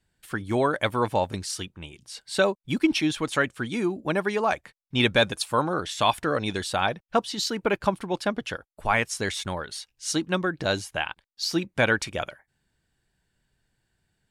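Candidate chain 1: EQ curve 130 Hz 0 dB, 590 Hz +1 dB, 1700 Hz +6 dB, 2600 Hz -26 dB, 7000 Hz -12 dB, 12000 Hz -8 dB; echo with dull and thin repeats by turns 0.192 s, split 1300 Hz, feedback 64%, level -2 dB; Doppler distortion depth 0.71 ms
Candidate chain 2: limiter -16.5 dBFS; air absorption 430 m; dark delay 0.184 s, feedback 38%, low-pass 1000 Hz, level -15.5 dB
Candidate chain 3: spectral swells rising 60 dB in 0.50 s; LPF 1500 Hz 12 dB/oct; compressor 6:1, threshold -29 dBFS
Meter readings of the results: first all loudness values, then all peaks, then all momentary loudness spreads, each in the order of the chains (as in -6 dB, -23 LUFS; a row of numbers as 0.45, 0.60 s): -23.0, -31.5, -34.0 LUFS; -5.0, -16.5, -15.5 dBFS; 11, 10, 6 LU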